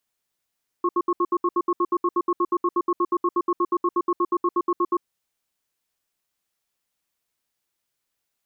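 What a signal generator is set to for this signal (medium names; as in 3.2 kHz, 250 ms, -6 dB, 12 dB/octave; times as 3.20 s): cadence 350 Hz, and 1.09 kHz, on 0.05 s, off 0.07 s, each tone -20.5 dBFS 4.16 s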